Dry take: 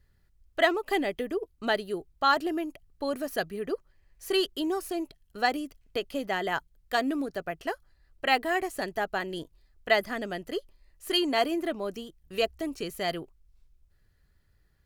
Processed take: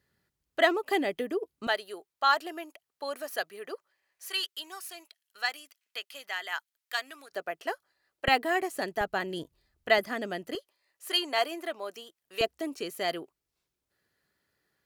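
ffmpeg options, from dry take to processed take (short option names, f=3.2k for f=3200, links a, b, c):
-af "asetnsamples=n=441:p=0,asendcmd='1.67 highpass f 650;4.28 highpass f 1400;7.32 highpass f 410;8.28 highpass f 180;9.01 highpass f 82;9.98 highpass f 170;10.55 highpass f 610;12.41 highpass f 270',highpass=180"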